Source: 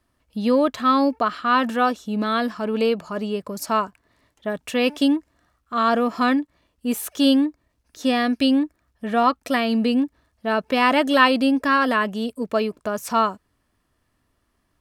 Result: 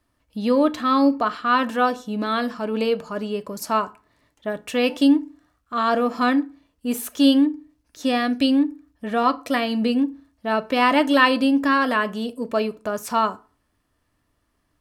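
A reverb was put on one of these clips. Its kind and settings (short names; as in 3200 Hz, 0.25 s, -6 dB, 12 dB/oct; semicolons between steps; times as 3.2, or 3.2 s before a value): FDN reverb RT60 0.36 s, low-frequency decay 1.1×, high-frequency decay 0.7×, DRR 11 dB; gain -1 dB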